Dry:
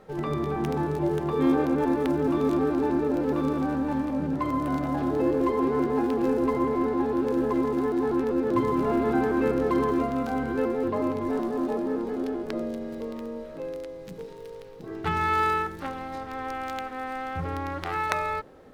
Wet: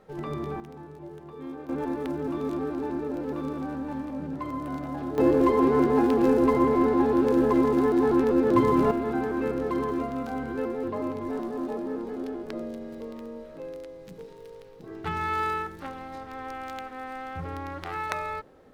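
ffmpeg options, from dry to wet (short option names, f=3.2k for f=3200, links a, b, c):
-af "asetnsamples=n=441:p=0,asendcmd='0.6 volume volume -16.5dB;1.69 volume volume -6dB;5.18 volume volume 3.5dB;8.91 volume volume -4dB',volume=-4.5dB"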